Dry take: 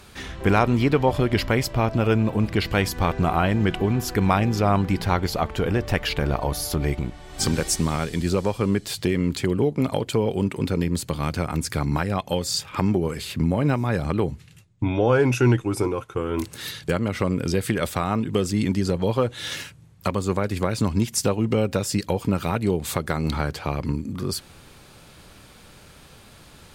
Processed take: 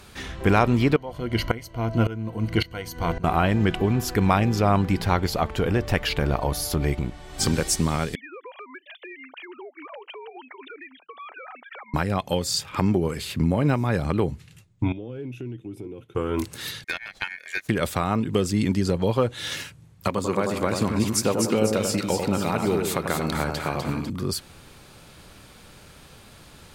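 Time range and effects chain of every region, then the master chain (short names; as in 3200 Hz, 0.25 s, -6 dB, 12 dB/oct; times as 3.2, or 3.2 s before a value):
0.96–3.24 ripple EQ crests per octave 1.9, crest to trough 11 dB + dB-ramp tremolo swelling 1.8 Hz, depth 19 dB
8.15–11.94 sine-wave speech + HPF 580 Hz 24 dB/oct + compressor 10:1, threshold -36 dBFS
14.92–16.15 EQ curve 330 Hz 0 dB, 1100 Hz -21 dB, 3300 Hz -3 dB, 4800 Hz -14 dB, 8200 Hz -6 dB, 13000 Hz +14 dB + compressor 3:1, threshold -35 dBFS + BPF 110–4500 Hz
16.84–17.69 HPF 270 Hz 6 dB/oct + ring modulator 2000 Hz + upward expander 2.5:1, over -39 dBFS
20.08–24.1 HPF 180 Hz 6 dB/oct + split-band echo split 1300 Hz, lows 92 ms, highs 0.249 s, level -4.5 dB
whole clip: dry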